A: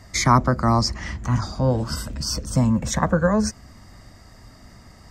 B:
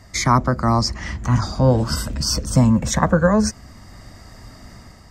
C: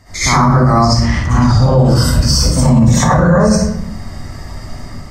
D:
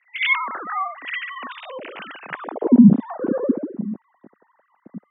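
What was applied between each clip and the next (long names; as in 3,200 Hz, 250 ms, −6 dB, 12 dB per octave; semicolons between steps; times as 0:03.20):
automatic gain control gain up to 5.5 dB
convolution reverb RT60 0.70 s, pre-delay 56 ms, DRR −11.5 dB; brickwall limiter −1 dBFS, peak gain reduction 9 dB; level −1 dB
three sine waves on the formant tracks; band-pass filter sweep 2,800 Hz → 210 Hz, 0:02.22–0:02.82; level −3.5 dB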